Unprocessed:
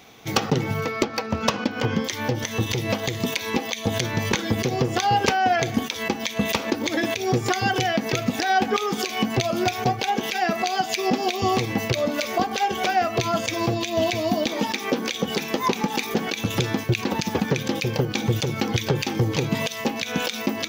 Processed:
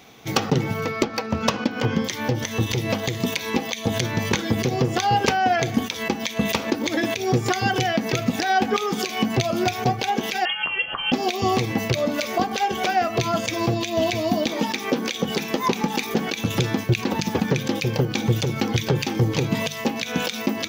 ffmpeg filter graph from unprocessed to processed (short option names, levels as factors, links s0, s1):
-filter_complex "[0:a]asettb=1/sr,asplit=3[s0][s1][s2];[s0]atrim=end=10.454[s3];[s1]atrim=start=10.45:end=11.12,asetpts=PTS-STARTPTS,afade=t=in:d=0.004:c=qsin,afade=t=out:st=0.666:d=0.004:c=qsin,highpass=59,lowshelf=f=250:g=-9.5,lowpass=f=3000:t=q:w=0.5098,lowpass=f=3000:t=q:w=0.6013,lowpass=f=3000:t=q:w=0.9,lowpass=f=3000:t=q:w=2.563,afreqshift=-3500[s4];[s2]atrim=start=11.116[s5];[s3][s4]acrossfade=d=0.004:c1=hsin:c2=qsin[s6];[s6][s5]acrossfade=d=0.004:c1=qsin:c2=hsin,equalizer=f=150:t=o:w=1.8:g=3,bandreject=f=50:t=h:w=6,bandreject=f=100:t=h:w=6,bandreject=f=150:t=h:w=6,bandreject=f=200:t=h:w=6"